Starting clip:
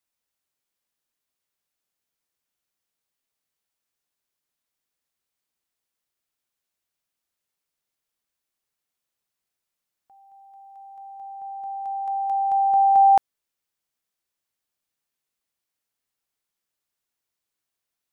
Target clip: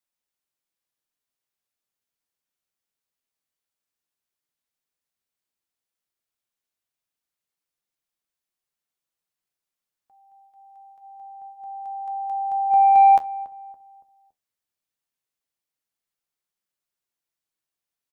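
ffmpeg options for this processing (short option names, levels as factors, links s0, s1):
-filter_complex "[0:a]asplit=3[s0][s1][s2];[s0]afade=t=out:st=12.7:d=0.02[s3];[s1]acontrast=52,afade=t=in:st=12.7:d=0.02,afade=t=out:st=13.15:d=0.02[s4];[s2]afade=t=in:st=13.15:d=0.02[s5];[s3][s4][s5]amix=inputs=3:normalize=0,flanger=delay=5.5:depth=7.5:regen=-58:speed=0.12:shape=sinusoidal,asplit=2[s6][s7];[s7]adelay=282,lowpass=f=920:p=1,volume=0.158,asplit=2[s8][s9];[s9]adelay=282,lowpass=f=920:p=1,volume=0.43,asplit=2[s10][s11];[s11]adelay=282,lowpass=f=920:p=1,volume=0.43,asplit=2[s12][s13];[s13]adelay=282,lowpass=f=920:p=1,volume=0.43[s14];[s6][s8][s10][s12][s14]amix=inputs=5:normalize=0"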